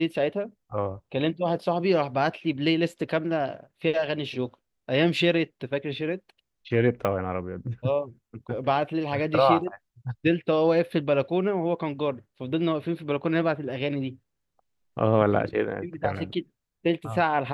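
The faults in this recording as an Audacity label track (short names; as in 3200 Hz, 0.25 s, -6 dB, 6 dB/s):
7.050000	7.050000	pop -14 dBFS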